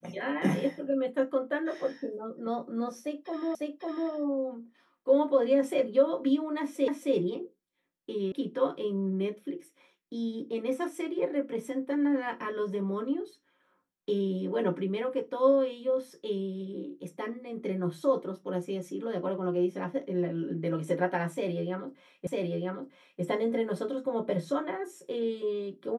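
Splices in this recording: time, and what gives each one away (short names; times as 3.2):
3.55 repeat of the last 0.55 s
6.88 repeat of the last 0.27 s
8.32 sound cut off
22.27 repeat of the last 0.95 s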